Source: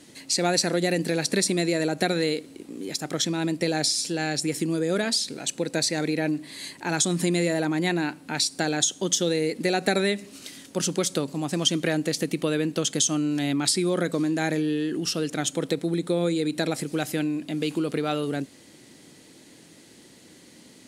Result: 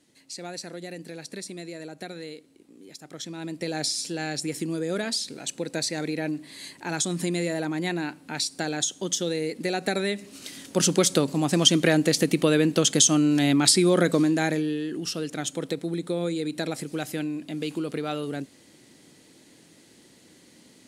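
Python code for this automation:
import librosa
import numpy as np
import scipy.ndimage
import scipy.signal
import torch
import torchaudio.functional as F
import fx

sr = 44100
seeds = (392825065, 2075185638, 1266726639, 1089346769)

y = fx.gain(x, sr, db=fx.line((3.03, -14.0), (3.83, -3.5), (10.04, -3.5), (10.83, 4.5), (14.16, 4.5), (14.82, -3.5)))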